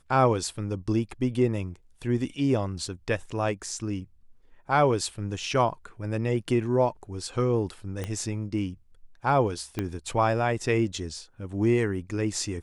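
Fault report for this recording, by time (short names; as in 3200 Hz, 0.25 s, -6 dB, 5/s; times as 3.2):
8.04 pop -19 dBFS
9.79 pop -15 dBFS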